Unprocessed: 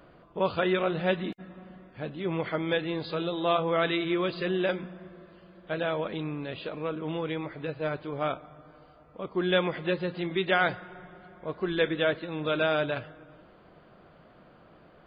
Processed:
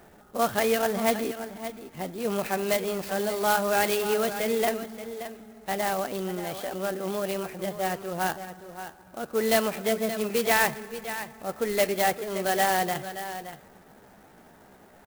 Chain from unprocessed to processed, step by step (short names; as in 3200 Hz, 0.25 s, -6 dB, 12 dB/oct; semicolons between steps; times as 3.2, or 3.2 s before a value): echo 0.575 s -11.5 dB; pitch shift +3.5 st; clock jitter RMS 0.049 ms; gain +2 dB